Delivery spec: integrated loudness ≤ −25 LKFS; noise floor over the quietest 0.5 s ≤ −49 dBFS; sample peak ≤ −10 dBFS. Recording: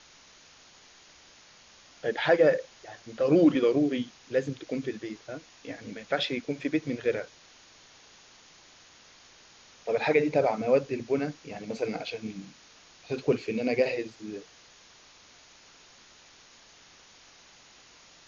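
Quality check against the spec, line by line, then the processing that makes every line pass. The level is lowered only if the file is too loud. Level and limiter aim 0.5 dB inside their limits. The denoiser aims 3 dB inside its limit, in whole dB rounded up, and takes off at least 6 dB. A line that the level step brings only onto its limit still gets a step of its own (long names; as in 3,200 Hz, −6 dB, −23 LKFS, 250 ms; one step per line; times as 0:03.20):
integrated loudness −28.0 LKFS: in spec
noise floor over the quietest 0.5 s −55 dBFS: in spec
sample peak −10.5 dBFS: in spec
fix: no processing needed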